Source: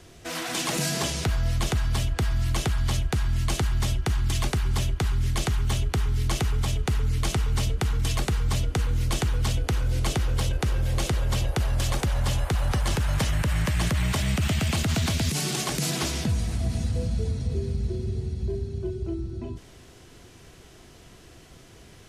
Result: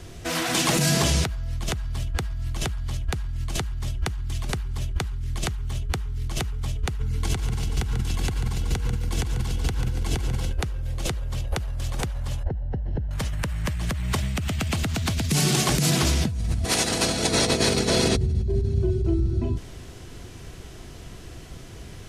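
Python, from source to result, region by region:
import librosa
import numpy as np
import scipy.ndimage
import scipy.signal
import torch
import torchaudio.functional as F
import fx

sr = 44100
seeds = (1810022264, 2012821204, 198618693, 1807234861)

y = fx.chain(x, sr, fx.notch_comb(f0_hz=610.0),
    fx.echo_feedback(ms=142, feedback_pct=47, wet_db=-5.5), at=(7.0, 10.53))
y = fx.chain(y, sr, fx.cvsd(bps=32000),
    fx.moving_average(points=37), at=(12.43, 13.11))
y = fx.spec_clip(y, sr, under_db=30, at=(16.64, 18.15), fade=0.02)
y = fx.over_compress(y, sr, threshold_db=-29.0, ratio=-0.5, at=(16.64, 18.15), fade=0.02)
y = fx.highpass(y, sr, hz=170.0, slope=6, at=(16.64, 18.15), fade=0.02)
y = fx.low_shelf(y, sr, hz=150.0, db=7.5)
y = fx.over_compress(y, sr, threshold_db=-25.0, ratio=-1.0)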